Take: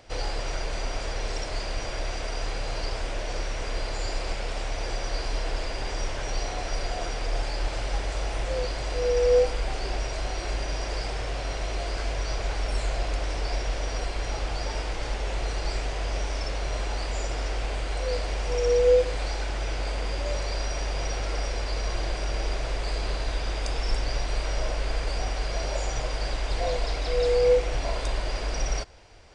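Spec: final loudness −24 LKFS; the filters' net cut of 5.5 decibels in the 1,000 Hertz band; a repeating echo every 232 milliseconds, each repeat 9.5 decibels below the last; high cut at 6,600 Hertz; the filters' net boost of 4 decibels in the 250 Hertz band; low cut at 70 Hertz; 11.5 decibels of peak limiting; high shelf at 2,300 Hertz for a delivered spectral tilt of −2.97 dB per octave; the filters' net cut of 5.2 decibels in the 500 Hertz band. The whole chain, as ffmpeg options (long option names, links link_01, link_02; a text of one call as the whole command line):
ffmpeg -i in.wav -af "highpass=70,lowpass=6600,equalizer=frequency=250:width_type=o:gain=8,equalizer=frequency=500:width_type=o:gain=-6,equalizer=frequency=1000:width_type=o:gain=-7,highshelf=frequency=2300:gain=6,alimiter=level_in=2.5dB:limit=-24dB:level=0:latency=1,volume=-2.5dB,aecho=1:1:232|464|696|928:0.335|0.111|0.0365|0.012,volume=10.5dB" out.wav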